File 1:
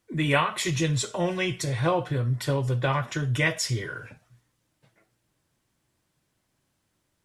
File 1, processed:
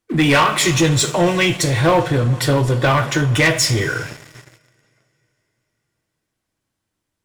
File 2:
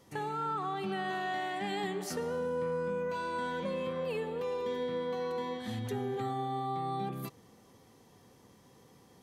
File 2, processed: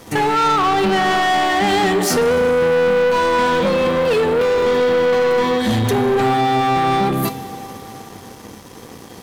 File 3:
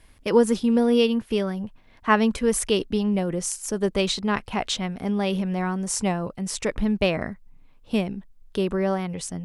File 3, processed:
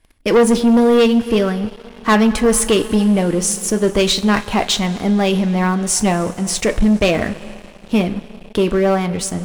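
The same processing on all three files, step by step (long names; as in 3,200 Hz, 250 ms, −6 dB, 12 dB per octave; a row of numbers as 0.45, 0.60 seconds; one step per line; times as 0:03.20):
coupled-rooms reverb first 0.21 s, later 4 s, from −19 dB, DRR 9 dB
leveller curve on the samples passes 3
loudness normalisation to −16 LKFS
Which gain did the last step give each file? +1.5, +12.5, −1.0 decibels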